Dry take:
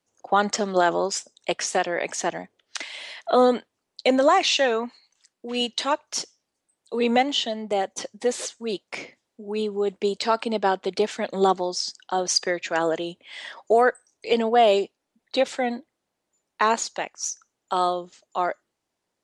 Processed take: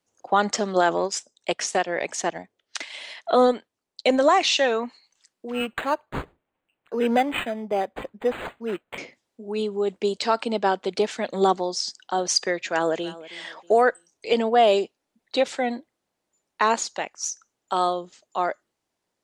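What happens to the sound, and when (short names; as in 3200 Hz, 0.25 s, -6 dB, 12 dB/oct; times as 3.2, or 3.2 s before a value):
0.97–4.24 transient shaper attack 0 dB, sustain -6 dB
5.5–8.98 decimation joined by straight lines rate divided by 8×
12.62–13.22 echo throw 0.32 s, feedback 35%, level -18 dB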